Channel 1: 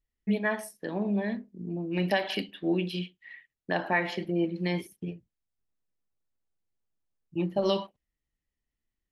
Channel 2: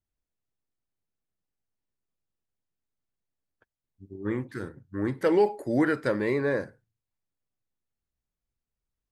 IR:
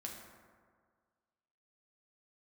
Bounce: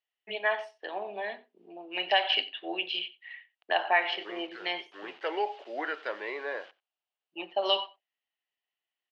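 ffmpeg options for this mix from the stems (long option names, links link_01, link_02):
-filter_complex "[0:a]volume=1dB,asplit=2[link_01][link_02];[link_02]volume=-20.5dB[link_03];[1:a]acrusher=bits=7:mix=0:aa=0.000001,volume=-4dB,asplit=2[link_04][link_05];[link_05]volume=-22.5dB[link_06];[link_03][link_06]amix=inputs=2:normalize=0,aecho=0:1:91:1[link_07];[link_01][link_04][link_07]amix=inputs=3:normalize=0,highpass=frequency=480:width=0.5412,highpass=frequency=480:width=1.3066,equalizer=frequency=520:width_type=q:width=4:gain=-6,equalizer=frequency=730:width_type=q:width=4:gain=6,equalizer=frequency=2900:width_type=q:width=4:gain=10,lowpass=frequency=4300:width=0.5412,lowpass=frequency=4300:width=1.3066"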